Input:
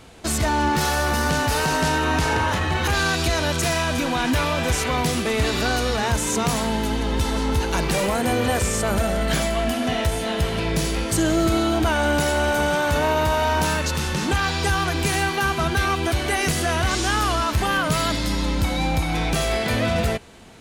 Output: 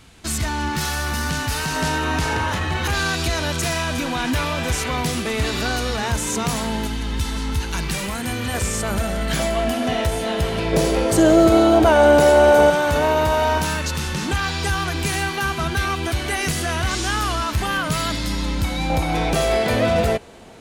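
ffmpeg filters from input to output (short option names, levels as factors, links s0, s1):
-af "asetnsamples=n=441:p=0,asendcmd='1.76 equalizer g -2.5;6.87 equalizer g -11.5;8.54 equalizer g -3.5;9.39 equalizer g 3;10.73 equalizer g 12;12.7 equalizer g 3.5;13.58 equalizer g -3.5;18.9 equalizer g 6.5',equalizer=f=550:t=o:w=1.6:g=-9.5"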